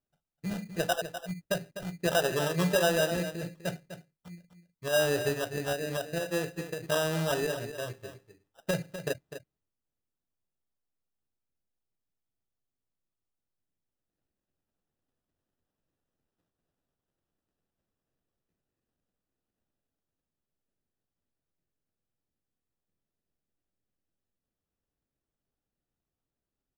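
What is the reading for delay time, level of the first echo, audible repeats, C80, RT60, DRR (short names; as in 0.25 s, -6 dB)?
0.251 s, -11.0 dB, 1, none, none, none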